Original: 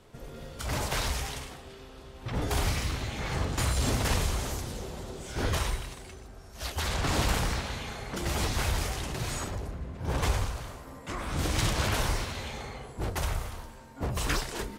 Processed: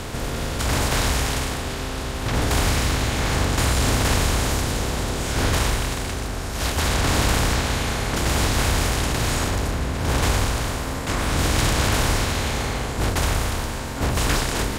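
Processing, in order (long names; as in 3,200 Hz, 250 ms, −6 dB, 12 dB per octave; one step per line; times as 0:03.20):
compressor on every frequency bin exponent 0.4
level +3 dB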